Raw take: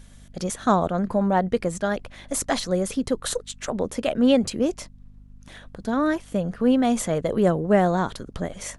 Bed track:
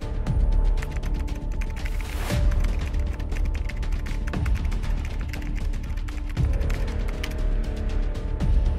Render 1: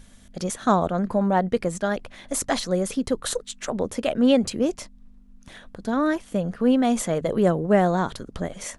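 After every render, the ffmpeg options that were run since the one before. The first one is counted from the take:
-af "bandreject=f=50:t=h:w=4,bandreject=f=100:t=h:w=4,bandreject=f=150:t=h:w=4"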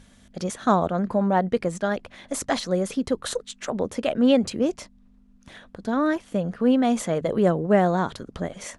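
-af "highpass=f=60:p=1,highshelf=f=9.2k:g=-10"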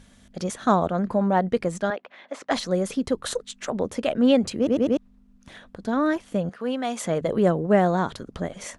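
-filter_complex "[0:a]asettb=1/sr,asplit=3[a][b][c];[a]atrim=end=1.904[d];[b]atrim=start=1.9:end=2.51,asetpts=PTS-STARTPTS,afade=t=in:d=0.004:c=qsin,afade=t=out:st=0.606:d=0.004:c=qsin,highpass=460,lowpass=2.9k[e];[c]atrim=start=2.506[f];[d][e]acrossfade=d=0.004:c1=hsin:c2=qsin[g];[g][f]acrossfade=d=0.004:c1=qsin:c2=hsin,asettb=1/sr,asplit=3[h][i][j];[h]atrim=end=6.494[k];[i]atrim=start=6.49:end=7.04,asetpts=PTS-STARTPTS,afade=t=in:d=0.004:c=qsin,afade=t=out:st=0.546:d=0.004:c=qsin,highpass=f=760:p=1[l];[j]atrim=start=7.036[m];[k][l]acrossfade=d=0.004:c1=hsin:c2=qsin[n];[n][m]acrossfade=d=0.004:c1=qsin:c2=hsin,asplit=5[o][p][q][r][s];[o]atrim=end=4.672[t];[p]atrim=start=4.568:end=4.672[u];[q]atrim=start=4.568:end=4.672[v];[r]atrim=start=4.568:end=4.672[w];[s]atrim=start=4.968[x];[t][u]acrossfade=d=0.004:c1=hsin:c2=hsin[y];[y][v]acrossfade=d=0.004:c1=hsin:c2=hsin[z];[z][w]acrossfade=d=0.004:c1=hsin:c2=hsin[aa];[aa][x]acrossfade=d=0.004:c1=hsin:c2=hsin"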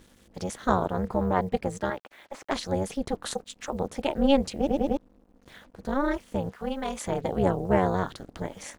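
-af "acrusher=bits=8:mix=0:aa=0.5,tremolo=f=280:d=0.974"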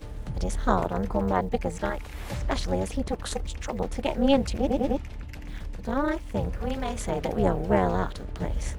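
-filter_complex "[1:a]volume=-9dB[a];[0:a][a]amix=inputs=2:normalize=0"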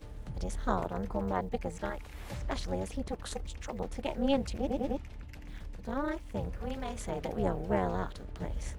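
-af "volume=-7.5dB"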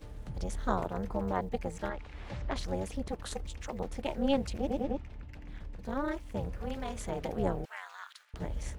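-filter_complex "[0:a]asettb=1/sr,asplit=3[a][b][c];[a]atrim=end=1.884[d];[b]atrim=start=1.88:end=2.56,asetpts=PTS-STARTPTS,afade=t=in:d=0.004:c=qsin,afade=t=out:st=0.676:d=0.004:c=qsin,lowpass=4.2k[e];[c]atrim=start=2.556[f];[d][e]acrossfade=d=0.004:c1=hsin:c2=qsin[g];[g][f]acrossfade=d=0.004:c1=qsin:c2=hsin,asettb=1/sr,asplit=3[h][i][j];[h]atrim=end=4.834[k];[i]atrim=start=4.83:end=5.79,asetpts=PTS-STARTPTS,afade=t=in:d=0.004:c=qsin,afade=t=out:st=0.956:d=0.004:c=qsin,lowpass=f=2.8k:p=1[l];[j]atrim=start=5.786[m];[k][l]acrossfade=d=0.004:c1=hsin:c2=qsin[n];[n][m]acrossfade=d=0.004:c1=qsin:c2=hsin,asettb=1/sr,asplit=3[o][p][q];[o]atrim=end=7.654[r];[p]atrim=start=7.65:end=8.34,asetpts=PTS-STARTPTS,afade=t=in:d=0.004:c=qsin,afade=t=out:st=0.686:d=0.004:c=qsin,highpass=f=1.3k:w=0.5412,highpass=f=1.3k:w=1.3066[s];[q]atrim=start=8.336[t];[r][s]acrossfade=d=0.004:c1=hsin:c2=qsin[u];[u][t]acrossfade=d=0.004:c1=qsin:c2=hsin"

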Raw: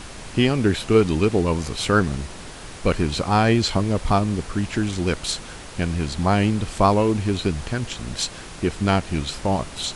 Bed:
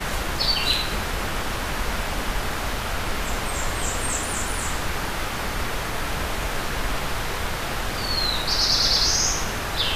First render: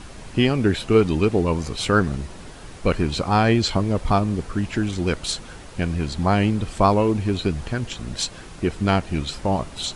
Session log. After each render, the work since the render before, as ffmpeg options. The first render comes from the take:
-af "afftdn=nr=6:nf=-38"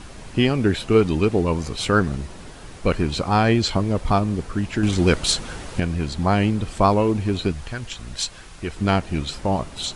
-filter_complex "[0:a]asettb=1/sr,asplit=3[a][b][c];[a]atrim=end=4.834[d];[b]atrim=start=4.83:end=5.8,asetpts=PTS-STARTPTS,afade=t=in:d=0.004:c=qsin,afade=t=out:st=0.966:d=0.004:c=qsin,acontrast=51[e];[c]atrim=start=5.796[f];[d][e]acrossfade=d=0.004:c1=hsin:c2=qsin[g];[g][f]acrossfade=d=0.004:c1=qsin:c2=hsin,asettb=1/sr,asplit=3[h][i][j];[h]atrim=end=7.524[k];[i]atrim=start=7.52:end=8.77,asetpts=PTS-STARTPTS,afade=t=in:d=0.004:c=qsin,afade=t=out:st=1.246:d=0.004:c=qsin,equalizer=f=260:w=0.41:g=-8[l];[j]atrim=start=8.766[m];[k][l]acrossfade=d=0.004:c1=hsin:c2=qsin[n];[n][m]acrossfade=d=0.004:c1=qsin:c2=hsin"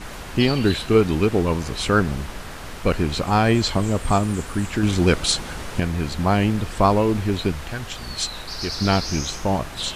-filter_complex "[1:a]volume=-10dB[a];[0:a][a]amix=inputs=2:normalize=0"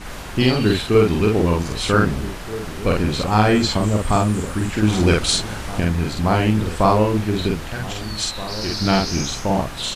-filter_complex "[0:a]asplit=2[a][b];[b]adelay=47,volume=-2dB[c];[a][c]amix=inputs=2:normalize=0,asplit=2[d][e];[e]adelay=1574,volume=-14dB,highshelf=f=4k:g=-35.4[f];[d][f]amix=inputs=2:normalize=0"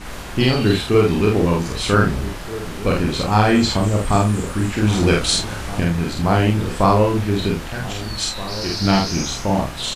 -filter_complex "[0:a]asplit=2[a][b];[b]adelay=30,volume=-7dB[c];[a][c]amix=inputs=2:normalize=0"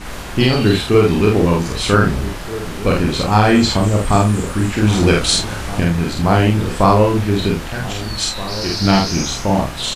-af "volume=3dB,alimiter=limit=-1dB:level=0:latency=1"

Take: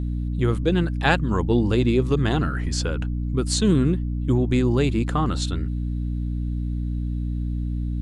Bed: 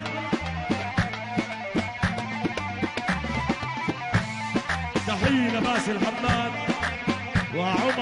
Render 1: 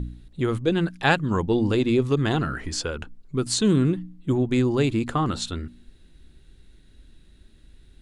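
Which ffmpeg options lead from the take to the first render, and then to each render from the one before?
-af "bandreject=f=60:t=h:w=4,bandreject=f=120:t=h:w=4,bandreject=f=180:t=h:w=4,bandreject=f=240:t=h:w=4,bandreject=f=300:t=h:w=4"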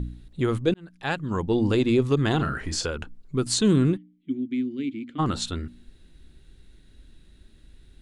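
-filter_complex "[0:a]asettb=1/sr,asplit=3[a][b][c];[a]atrim=end=2.364[d];[b]atrim=start=2.36:end=2.87,asetpts=PTS-STARTPTS,afade=t=in:d=0.004:c=qsin,afade=t=out:st=0.506:d=0.004:c=qsin,asplit=2[e][f];[f]adelay=35,volume=-8.5dB[g];[e][g]amix=inputs=2:normalize=0,atrim=end_sample=22491[h];[c]atrim=start=2.866[i];[d][h]acrossfade=d=0.004:c1=hsin:c2=qsin[j];[j][i]acrossfade=d=0.004:c1=qsin:c2=hsin,asplit=3[k][l][m];[k]afade=t=out:st=3.96:d=0.02[n];[l]asplit=3[o][p][q];[o]bandpass=f=270:t=q:w=8,volume=0dB[r];[p]bandpass=f=2.29k:t=q:w=8,volume=-6dB[s];[q]bandpass=f=3.01k:t=q:w=8,volume=-9dB[t];[r][s][t]amix=inputs=3:normalize=0,afade=t=in:st=3.96:d=0.02,afade=t=out:st=5.18:d=0.02[u];[m]afade=t=in:st=5.18:d=0.02[v];[n][u][v]amix=inputs=3:normalize=0,asplit=2[w][x];[w]atrim=end=0.74,asetpts=PTS-STARTPTS,afade=t=out:st=0.736:d=0.004:c=hsin[y];[x]atrim=start=0.74,asetpts=PTS-STARTPTS,afade=t=in:d=0.92[z];[y][z]concat=n=2:v=0:a=1"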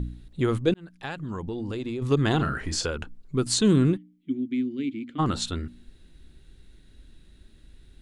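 -filter_complex "[0:a]asplit=3[a][b][c];[a]afade=t=out:st=0.94:d=0.02[d];[b]acompressor=threshold=-29dB:ratio=6:attack=3.2:release=140:knee=1:detection=peak,afade=t=in:st=0.94:d=0.02,afade=t=out:st=2.01:d=0.02[e];[c]afade=t=in:st=2.01:d=0.02[f];[d][e][f]amix=inputs=3:normalize=0"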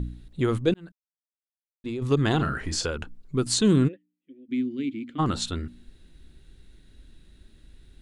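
-filter_complex "[0:a]asplit=3[a][b][c];[a]afade=t=out:st=3.87:d=0.02[d];[b]asplit=3[e][f][g];[e]bandpass=f=530:t=q:w=8,volume=0dB[h];[f]bandpass=f=1.84k:t=q:w=8,volume=-6dB[i];[g]bandpass=f=2.48k:t=q:w=8,volume=-9dB[j];[h][i][j]amix=inputs=3:normalize=0,afade=t=in:st=3.87:d=0.02,afade=t=out:st=4.48:d=0.02[k];[c]afade=t=in:st=4.48:d=0.02[l];[d][k][l]amix=inputs=3:normalize=0,asplit=3[m][n][o];[m]atrim=end=0.92,asetpts=PTS-STARTPTS,afade=t=out:st=0.916:d=0.004:c=hsin[p];[n]atrim=start=0.92:end=1.84,asetpts=PTS-STARTPTS,volume=0[q];[o]atrim=start=1.84,asetpts=PTS-STARTPTS,afade=t=in:d=0.004:c=hsin[r];[p][q][r]concat=n=3:v=0:a=1"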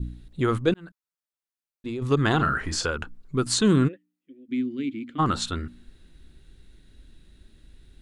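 -af "adynamicequalizer=threshold=0.00631:dfrequency=1300:dqfactor=1.3:tfrequency=1300:tqfactor=1.3:attack=5:release=100:ratio=0.375:range=3.5:mode=boostabove:tftype=bell"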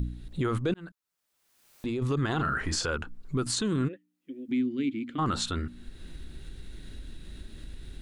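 -af "acompressor=mode=upward:threshold=-30dB:ratio=2.5,alimiter=limit=-20dB:level=0:latency=1:release=52"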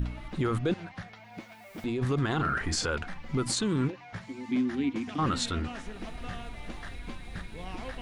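-filter_complex "[1:a]volume=-17.5dB[a];[0:a][a]amix=inputs=2:normalize=0"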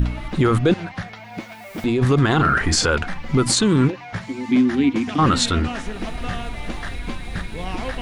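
-af "volume=11.5dB"

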